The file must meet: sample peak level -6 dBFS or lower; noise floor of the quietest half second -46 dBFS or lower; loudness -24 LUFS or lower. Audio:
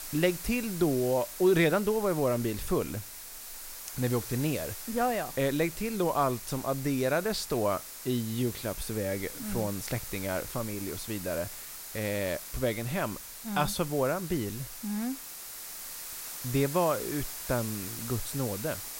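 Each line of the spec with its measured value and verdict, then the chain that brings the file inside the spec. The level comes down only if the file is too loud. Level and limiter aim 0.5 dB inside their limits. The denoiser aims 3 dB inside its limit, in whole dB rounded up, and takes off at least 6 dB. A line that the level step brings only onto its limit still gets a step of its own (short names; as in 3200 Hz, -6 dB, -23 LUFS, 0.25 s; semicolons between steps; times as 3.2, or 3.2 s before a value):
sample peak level -13.0 dBFS: OK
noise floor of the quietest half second -44 dBFS: fail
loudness -31.0 LUFS: OK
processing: denoiser 6 dB, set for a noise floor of -44 dBFS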